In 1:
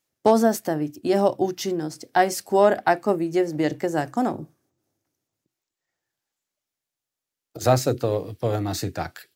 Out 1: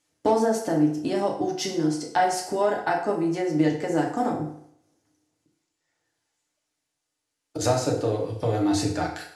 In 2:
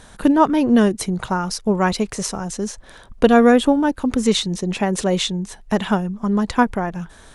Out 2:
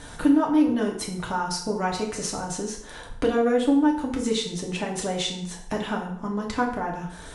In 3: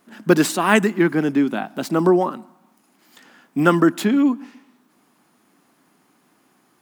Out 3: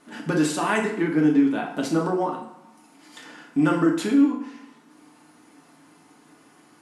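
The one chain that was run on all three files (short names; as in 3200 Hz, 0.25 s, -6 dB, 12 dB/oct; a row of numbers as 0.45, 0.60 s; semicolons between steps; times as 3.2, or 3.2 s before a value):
steep low-pass 11000 Hz 36 dB/oct; compressor 2:1, threshold -35 dBFS; FDN reverb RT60 0.68 s, low-frequency decay 0.8×, high-frequency decay 0.8×, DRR -1.5 dB; normalise peaks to -9 dBFS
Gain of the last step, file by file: +3.5, +0.5, +2.0 dB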